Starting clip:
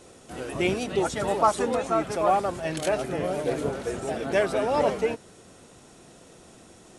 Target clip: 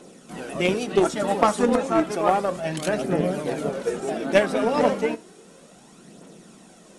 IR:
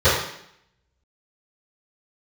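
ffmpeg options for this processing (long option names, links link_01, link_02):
-filter_complex "[0:a]aphaser=in_gain=1:out_gain=1:delay=4.4:decay=0.41:speed=0.32:type=triangular,lowshelf=frequency=140:width_type=q:width=3:gain=-9,aeval=exprs='0.376*(cos(1*acos(clip(val(0)/0.376,-1,1)))-cos(1*PI/2))+0.0841*(cos(3*acos(clip(val(0)/0.376,-1,1)))-cos(3*PI/2))+0.00944*(cos(5*acos(clip(val(0)/0.376,-1,1)))-cos(5*PI/2))':channel_layout=same,asplit=2[link_01][link_02];[1:a]atrim=start_sample=2205,atrim=end_sample=4410[link_03];[link_02][link_03]afir=irnorm=-1:irlink=0,volume=-37.5dB[link_04];[link_01][link_04]amix=inputs=2:normalize=0,volume=7dB"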